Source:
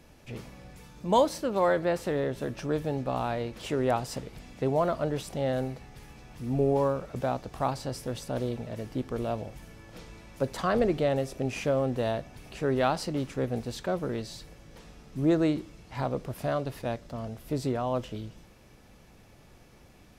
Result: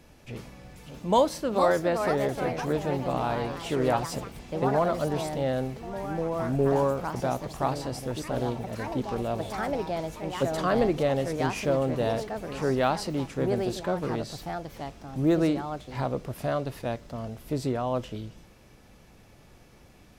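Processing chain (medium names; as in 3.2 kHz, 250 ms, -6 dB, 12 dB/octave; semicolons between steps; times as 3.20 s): ever faster or slower copies 637 ms, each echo +3 st, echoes 3, each echo -6 dB; trim +1 dB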